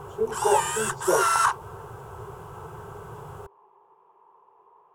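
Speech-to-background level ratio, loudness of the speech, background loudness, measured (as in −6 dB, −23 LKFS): −1.5 dB, −27.0 LKFS, −25.5 LKFS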